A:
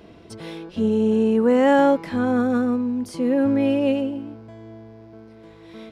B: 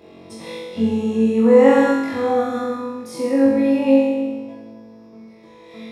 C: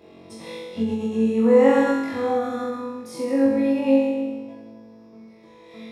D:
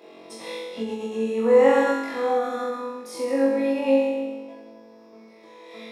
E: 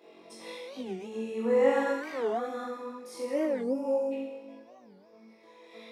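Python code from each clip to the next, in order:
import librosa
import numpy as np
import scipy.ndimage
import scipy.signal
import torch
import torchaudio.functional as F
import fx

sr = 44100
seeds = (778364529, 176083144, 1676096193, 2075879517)

y1 = fx.notch_comb(x, sr, f0_hz=1500.0)
y1 = fx.room_flutter(y1, sr, wall_m=3.8, rt60_s=1.2)
y1 = F.gain(torch.from_numpy(y1), -1.0).numpy()
y2 = fx.end_taper(y1, sr, db_per_s=100.0)
y2 = F.gain(torch.from_numpy(y2), -3.5).numpy()
y3 = fx.rider(y2, sr, range_db=4, speed_s=2.0)
y3 = scipy.signal.sosfilt(scipy.signal.butter(2, 370.0, 'highpass', fs=sr, output='sos'), y3)
y4 = fx.spec_box(y3, sr, start_s=3.63, length_s=0.49, low_hz=1600.0, high_hz=4700.0, gain_db=-22)
y4 = fx.chorus_voices(y4, sr, voices=6, hz=0.88, base_ms=19, depth_ms=2.8, mix_pct=35)
y4 = fx.record_warp(y4, sr, rpm=45.0, depth_cents=250.0)
y4 = F.gain(torch.from_numpy(y4), -5.0).numpy()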